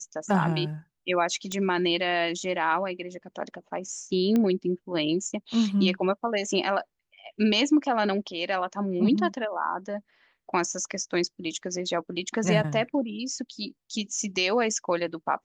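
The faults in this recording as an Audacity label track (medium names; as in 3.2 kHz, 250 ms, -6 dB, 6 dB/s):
1.520000	1.520000	pop -16 dBFS
4.360000	4.360000	pop -14 dBFS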